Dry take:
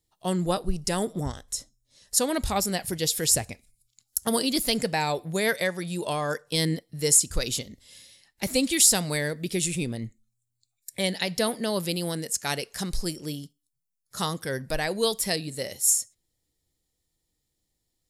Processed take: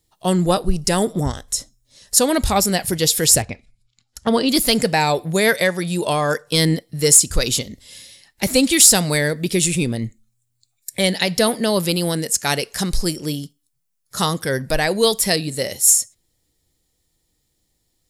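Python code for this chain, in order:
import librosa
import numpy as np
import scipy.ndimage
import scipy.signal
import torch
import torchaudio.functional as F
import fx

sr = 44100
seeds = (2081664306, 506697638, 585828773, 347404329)

p1 = fx.lowpass(x, sr, hz=3300.0, slope=12, at=(3.42, 4.49))
p2 = 10.0 ** (-17.5 / 20.0) * np.tanh(p1 / 10.0 ** (-17.5 / 20.0))
p3 = p1 + (p2 * librosa.db_to_amplitude(-4.0))
y = p3 * librosa.db_to_amplitude(5.0)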